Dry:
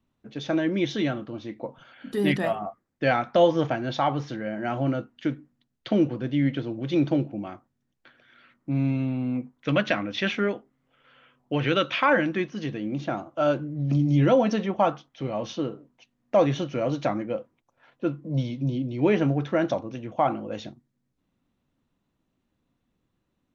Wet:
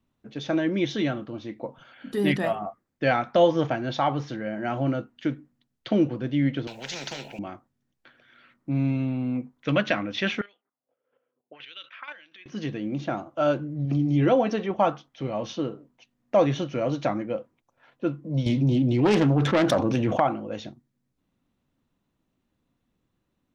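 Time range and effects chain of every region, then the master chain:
6.67–7.39 s: bass shelf 130 Hz -12 dB + static phaser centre 310 Hz, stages 6 + spectrum-flattening compressor 4:1
10.41–12.46 s: square tremolo 4.2 Hz, depth 65%, duty 20% + auto-wah 430–3500 Hz, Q 2.9, up, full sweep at -27 dBFS
13.85–14.71 s: tone controls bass -1 dB, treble -6 dB + comb 2.6 ms, depth 33%
18.46–20.20 s: self-modulated delay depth 0.33 ms + level flattener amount 70%
whole clip: none

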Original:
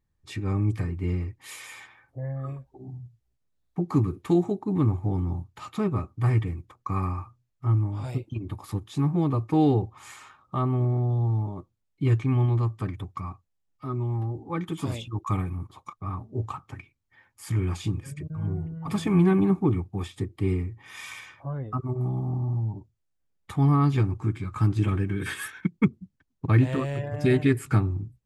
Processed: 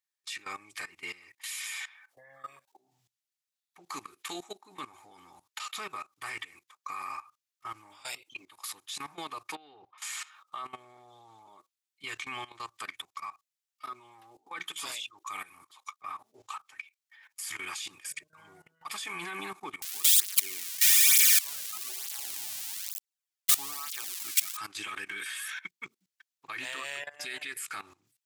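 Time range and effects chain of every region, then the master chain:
9.55–9.98 s: distance through air 270 m + compression 5:1, threshold -27 dBFS
19.82–24.57 s: zero-crossing glitches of -20 dBFS + cancelling through-zero flanger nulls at 1.1 Hz, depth 2.4 ms
whole clip: Bessel high-pass 2.7 kHz, order 2; level held to a coarse grid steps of 18 dB; trim +16 dB

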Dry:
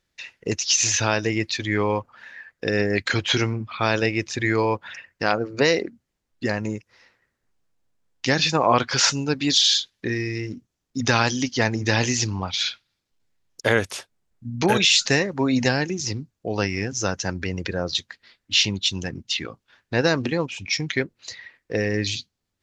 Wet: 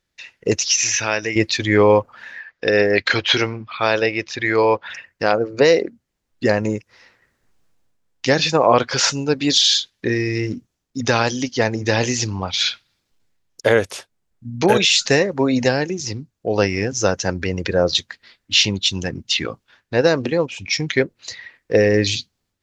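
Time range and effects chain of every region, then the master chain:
0.68–1.36 s: bass shelf 150 Hz -7 dB + upward compressor, threshold -22 dBFS + rippled Chebyshev low-pass 7.7 kHz, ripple 9 dB
2.39–4.90 s: low-pass 5.4 kHz 24 dB/octave + bass shelf 410 Hz -9.5 dB
whole clip: dynamic bell 510 Hz, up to +7 dB, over -36 dBFS, Q 1.5; level rider gain up to 11.5 dB; trim -1 dB

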